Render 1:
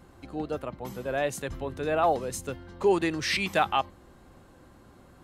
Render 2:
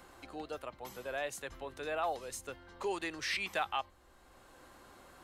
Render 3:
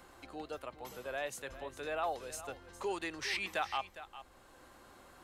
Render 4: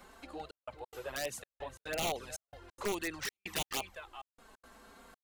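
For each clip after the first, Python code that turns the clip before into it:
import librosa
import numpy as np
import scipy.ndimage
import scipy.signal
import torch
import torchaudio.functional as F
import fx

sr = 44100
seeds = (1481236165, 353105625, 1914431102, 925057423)

y1 = fx.peak_eq(x, sr, hz=160.0, db=-14.5, octaves=2.6)
y1 = fx.band_squash(y1, sr, depth_pct=40)
y1 = y1 * librosa.db_to_amplitude(-6.0)
y2 = y1 + 10.0 ** (-14.0 / 20.0) * np.pad(y1, (int(408 * sr / 1000.0), 0))[:len(y1)]
y2 = y2 * librosa.db_to_amplitude(-1.0)
y3 = (np.mod(10.0 ** (29.0 / 20.0) * y2 + 1.0, 2.0) - 1.0) / 10.0 ** (29.0 / 20.0)
y3 = fx.env_flanger(y3, sr, rest_ms=5.7, full_db=-33.0)
y3 = fx.step_gate(y3, sr, bpm=178, pattern='xxxxxx..xx.', floor_db=-60.0, edge_ms=4.5)
y3 = y3 * librosa.db_to_amplitude(4.5)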